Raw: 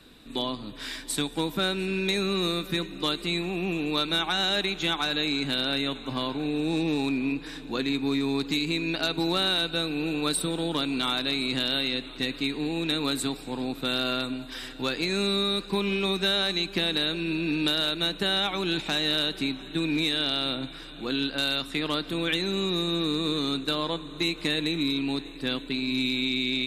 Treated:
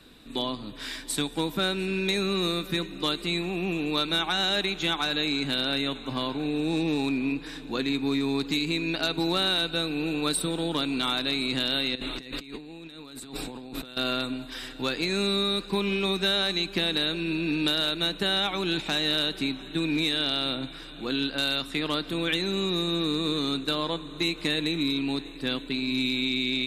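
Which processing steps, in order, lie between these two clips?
0:11.95–0:13.97: compressor whose output falls as the input rises −40 dBFS, ratio −1

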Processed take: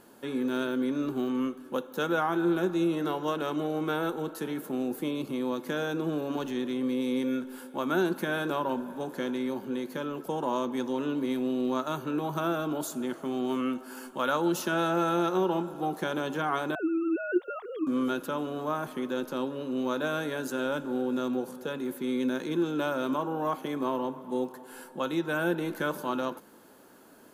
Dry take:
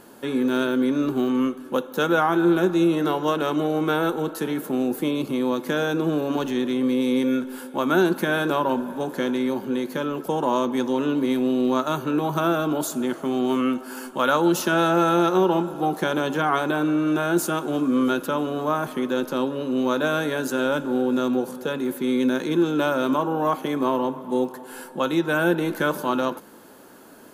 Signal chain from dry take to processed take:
0:16.75–0:17.87: three sine waves on the formant tracks
bit reduction 12 bits
level −7.5 dB

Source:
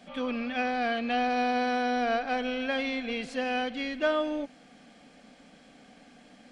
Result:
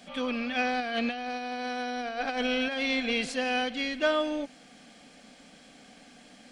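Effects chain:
high-shelf EQ 3,000 Hz +8.5 dB
0:00.80–0:03.32: compressor whose output falls as the input rises −30 dBFS, ratio −0.5

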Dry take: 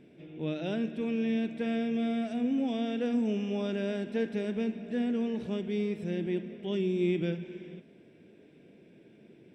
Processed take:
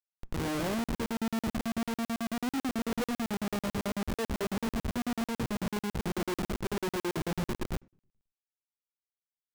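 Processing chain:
Butterworth low-pass 1,200 Hz 72 dB per octave
low-shelf EQ 270 Hz −4 dB
in parallel at −7 dB: bit-depth reduction 8 bits, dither triangular
on the sum: comparator with hysteresis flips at −37 dBFS
on a send at −20.5 dB: convolution reverb RT60 0.45 s, pre-delay 5 ms
on the sum: regular buffer underruns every 0.11 s, samples 2,048, zero, from 0:00.84

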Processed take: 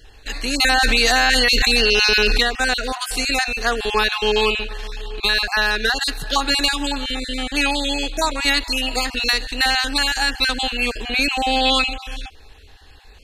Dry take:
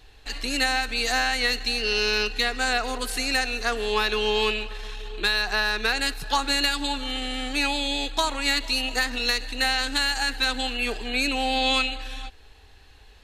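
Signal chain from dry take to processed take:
time-frequency cells dropped at random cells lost 21%
0:00.60–0:02.43: envelope flattener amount 100%
level +6 dB

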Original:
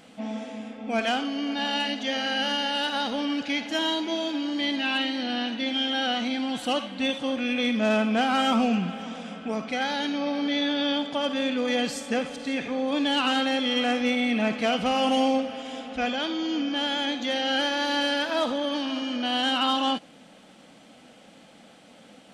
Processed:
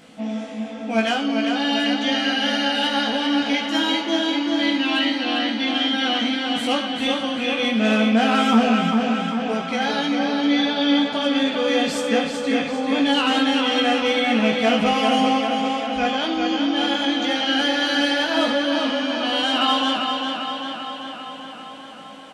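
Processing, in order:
double-tracking delay 18 ms −2.5 dB
tape delay 394 ms, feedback 72%, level −3.5 dB, low-pass 5,800 Hz
level +2 dB

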